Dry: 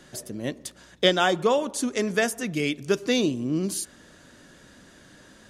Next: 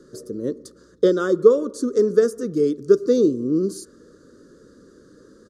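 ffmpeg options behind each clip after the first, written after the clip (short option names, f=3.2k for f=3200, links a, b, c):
-af "firequalizer=gain_entry='entry(140,0);entry(460,14);entry(770,-25);entry(1200,4);entry(2400,-27);entry(4400,-3);entry(13000,-10)':delay=0.05:min_phase=1,volume=-1.5dB"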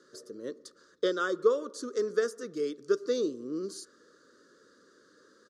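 -af "bandpass=f=2.5k:t=q:w=0.66:csg=0"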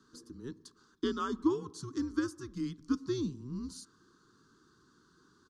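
-af "afreqshift=-130,volume=-4.5dB"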